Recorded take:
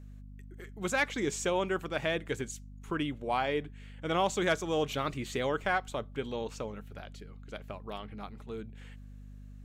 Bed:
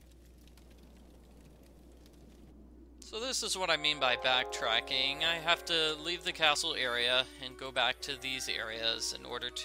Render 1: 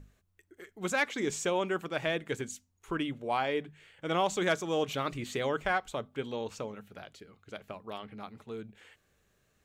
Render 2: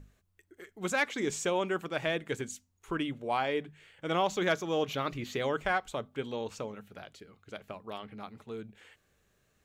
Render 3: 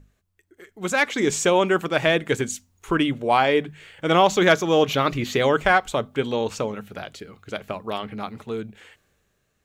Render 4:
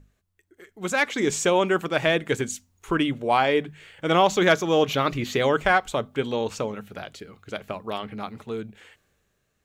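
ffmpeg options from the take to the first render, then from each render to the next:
-af "bandreject=f=50:t=h:w=6,bandreject=f=100:t=h:w=6,bandreject=f=150:t=h:w=6,bandreject=f=200:t=h:w=6,bandreject=f=250:t=h:w=6"
-filter_complex "[0:a]asettb=1/sr,asplit=3[s0][s1][s2];[s0]atrim=end=4.194[s3];[s1]atrim=start=4.19:end=5.4,asetpts=PTS-STARTPTS,afade=t=in:d=0.004:c=qsin,afade=t=out:st=1.206:d=0.004:c=qsin,equalizer=f=8400:t=o:w=0.3:g=-13[s4];[s2]atrim=start=5.396[s5];[s3][s4]acrossfade=d=0.004:c1=hsin:c2=qsin[s6];[s6][s5]acrossfade=d=0.004:c1=qsin:c2=hsin"
-af "dynaudnorm=f=110:g=17:m=4.22"
-af "volume=0.794"

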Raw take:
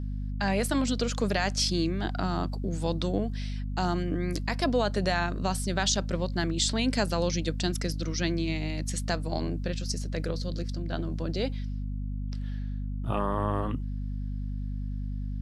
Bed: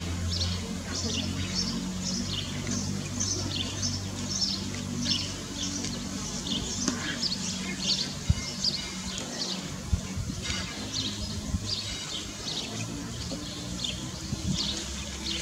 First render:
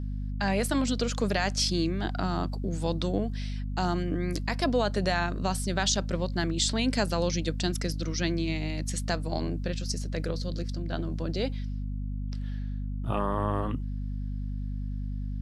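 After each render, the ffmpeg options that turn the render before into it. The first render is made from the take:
-af anull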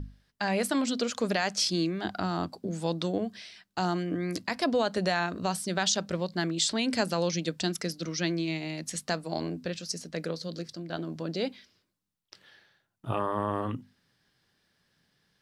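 -af "bandreject=f=50:t=h:w=6,bandreject=f=100:t=h:w=6,bandreject=f=150:t=h:w=6,bandreject=f=200:t=h:w=6,bandreject=f=250:t=h:w=6"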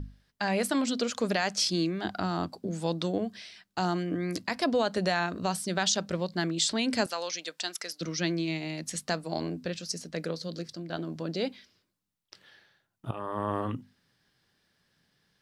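-filter_complex "[0:a]asettb=1/sr,asplit=3[s0][s1][s2];[s0]atrim=end=7.064[s3];[s1]atrim=start=7.06:end=8.01,asetpts=PTS-STARTPTS,afade=t=in:d=0.004:c=qsin,afade=t=out:st=0.946:d=0.004:c=qsin,highpass=740[s4];[s2]atrim=start=8.006[s5];[s3][s4]acrossfade=d=0.004:c1=hsin:c2=qsin[s6];[s6][s5]acrossfade=d=0.004:c1=qsin:c2=hsin,asplit=2[s7][s8];[s7]atrim=end=13.11,asetpts=PTS-STARTPTS,afade=t=out:st=13.106:d=0.004:c=hsin:silence=0.237137[s9];[s8]atrim=start=13.11,asetpts=PTS-STARTPTS,afade=t=in:d=0.4:silence=0.237137[s10];[s9][s10]concat=n=2:v=0:a=1"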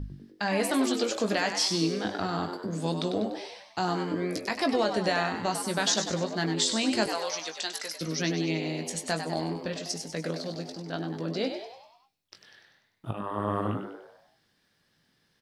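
-filter_complex "[0:a]asplit=2[s0][s1];[s1]adelay=19,volume=0.422[s2];[s0][s2]amix=inputs=2:normalize=0,asplit=7[s3][s4][s5][s6][s7][s8][s9];[s4]adelay=98,afreqshift=90,volume=0.398[s10];[s5]adelay=196,afreqshift=180,volume=0.2[s11];[s6]adelay=294,afreqshift=270,volume=0.1[s12];[s7]adelay=392,afreqshift=360,volume=0.0495[s13];[s8]adelay=490,afreqshift=450,volume=0.0248[s14];[s9]adelay=588,afreqshift=540,volume=0.0124[s15];[s3][s10][s11][s12][s13][s14][s15]amix=inputs=7:normalize=0"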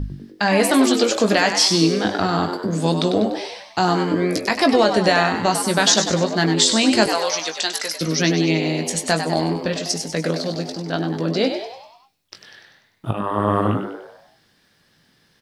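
-af "volume=3.35"

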